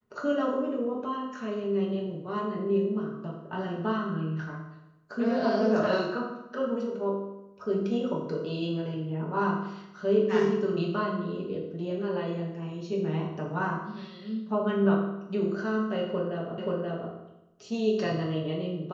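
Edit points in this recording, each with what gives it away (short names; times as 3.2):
16.58 repeat of the last 0.53 s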